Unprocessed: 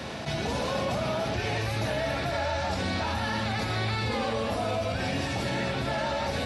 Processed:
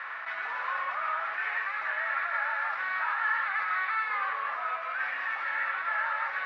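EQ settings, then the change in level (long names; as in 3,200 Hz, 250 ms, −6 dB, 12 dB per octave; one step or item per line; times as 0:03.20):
high-pass with resonance 1,200 Hz, resonance Q 4.2
low-pass with resonance 1,900 Hz, resonance Q 3.5
−8.0 dB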